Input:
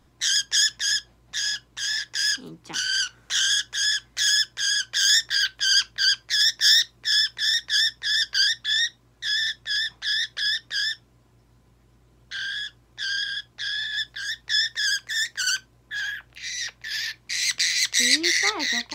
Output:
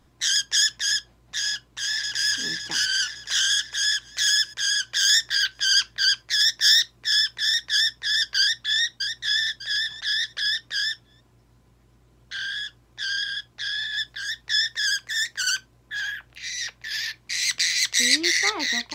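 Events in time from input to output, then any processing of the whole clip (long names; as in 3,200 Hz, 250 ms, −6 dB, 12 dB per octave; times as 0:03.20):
0:01.47–0:02.29: delay throw 560 ms, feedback 50%, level −2 dB
0:08.40–0:08.80: delay throw 600 ms, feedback 30%, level −6.5 dB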